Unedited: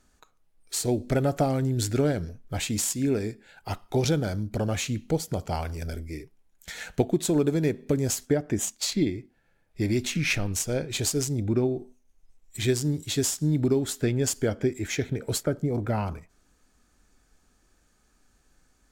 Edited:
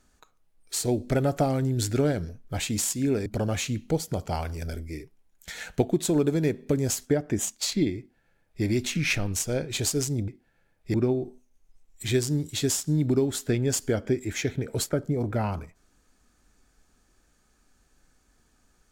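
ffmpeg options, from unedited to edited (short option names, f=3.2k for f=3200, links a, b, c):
-filter_complex "[0:a]asplit=4[a][b][c][d];[a]atrim=end=3.262[e];[b]atrim=start=4.458:end=11.482[f];[c]atrim=start=9.178:end=9.842[g];[d]atrim=start=11.478[h];[e][f]acrossfade=d=0.004:c1=hsin:c2=hsin[i];[i][g]acrossfade=d=0.004:c1=hsin:c2=hsin[j];[j][h]acrossfade=d=0.004:c1=hsin:c2=hsin"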